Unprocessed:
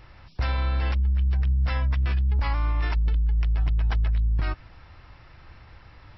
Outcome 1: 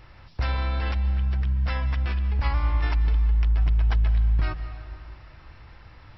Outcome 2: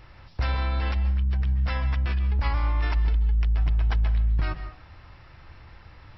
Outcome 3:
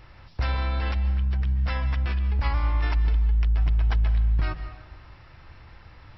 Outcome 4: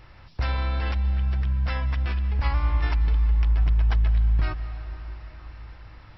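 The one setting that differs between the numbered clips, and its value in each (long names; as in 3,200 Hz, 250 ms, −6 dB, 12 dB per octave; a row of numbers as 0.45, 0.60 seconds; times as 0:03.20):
dense smooth reverb, RT60: 2.5, 0.55, 1.2, 5.2 seconds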